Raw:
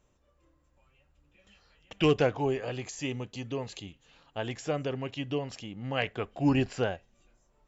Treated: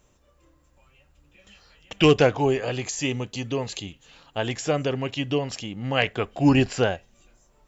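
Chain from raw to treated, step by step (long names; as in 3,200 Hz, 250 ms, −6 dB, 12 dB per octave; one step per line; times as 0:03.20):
high-shelf EQ 3,800 Hz +5.5 dB
floating-point word with a short mantissa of 8 bits
level +7 dB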